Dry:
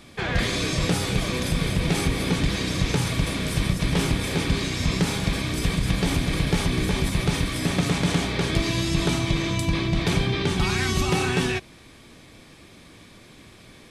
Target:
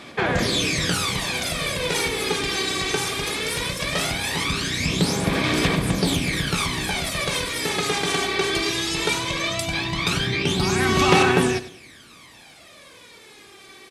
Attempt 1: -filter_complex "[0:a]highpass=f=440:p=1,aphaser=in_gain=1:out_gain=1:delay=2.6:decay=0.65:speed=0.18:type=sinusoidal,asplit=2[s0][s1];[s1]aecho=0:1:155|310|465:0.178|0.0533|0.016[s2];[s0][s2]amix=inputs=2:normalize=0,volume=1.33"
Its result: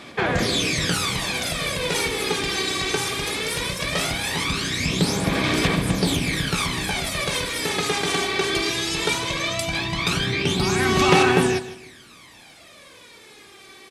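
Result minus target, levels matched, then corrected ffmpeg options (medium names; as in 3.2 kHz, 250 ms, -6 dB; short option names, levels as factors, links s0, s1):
echo 58 ms late
-filter_complex "[0:a]highpass=f=440:p=1,aphaser=in_gain=1:out_gain=1:delay=2.6:decay=0.65:speed=0.18:type=sinusoidal,asplit=2[s0][s1];[s1]aecho=0:1:97|194|291:0.178|0.0533|0.016[s2];[s0][s2]amix=inputs=2:normalize=0,volume=1.33"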